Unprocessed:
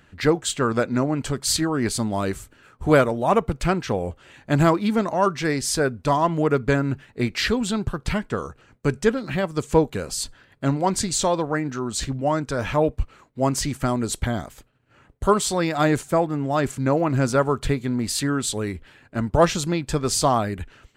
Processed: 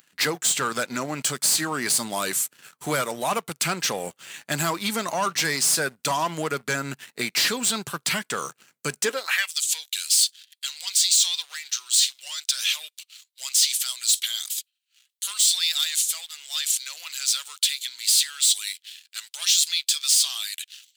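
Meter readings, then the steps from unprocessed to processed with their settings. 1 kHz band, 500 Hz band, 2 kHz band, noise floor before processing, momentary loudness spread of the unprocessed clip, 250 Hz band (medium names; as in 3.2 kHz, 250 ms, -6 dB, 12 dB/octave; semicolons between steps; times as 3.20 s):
-6.5 dB, -11.5 dB, +1.0 dB, -58 dBFS, 9 LU, -13.0 dB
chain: vibrato 1.6 Hz 26 cents; compression 2:1, threshold -22 dBFS, peak gain reduction 7 dB; differentiator; peak limiter -24 dBFS, peak gain reduction 11 dB; waveshaping leveller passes 3; high-pass sweep 150 Hz -> 3.5 kHz, 8.96–9.52 s; trim +8 dB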